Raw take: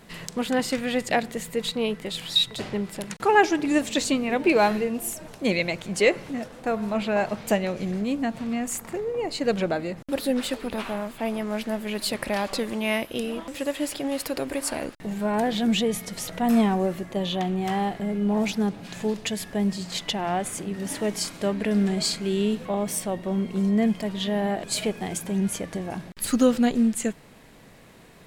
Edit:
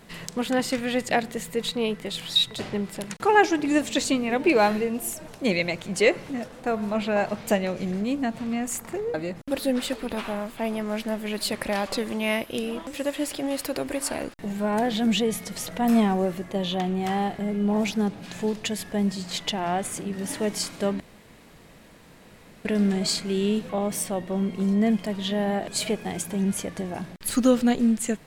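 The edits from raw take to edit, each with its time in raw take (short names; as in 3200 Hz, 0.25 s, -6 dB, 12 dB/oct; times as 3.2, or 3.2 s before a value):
9.14–9.75 cut
21.61 insert room tone 1.65 s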